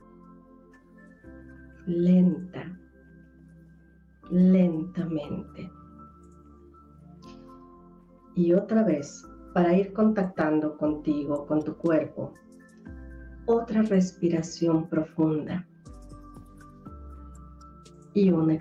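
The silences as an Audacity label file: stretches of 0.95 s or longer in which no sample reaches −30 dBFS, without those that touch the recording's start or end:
2.620000	4.320000	silence
5.620000	8.370000	silence
12.260000	13.480000	silence
15.600000	18.160000	silence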